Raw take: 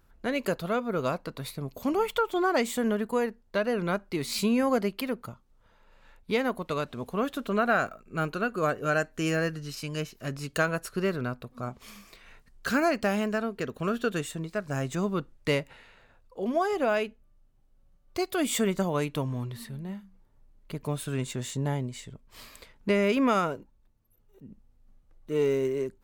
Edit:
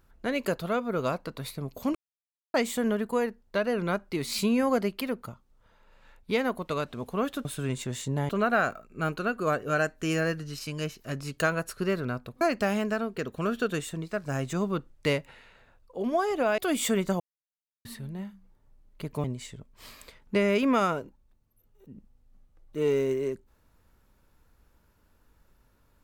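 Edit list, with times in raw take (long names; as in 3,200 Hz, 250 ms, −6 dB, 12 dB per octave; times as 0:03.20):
0:01.95–0:02.54: silence
0:11.57–0:12.83: remove
0:17.00–0:18.28: remove
0:18.90–0:19.55: silence
0:20.94–0:21.78: move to 0:07.45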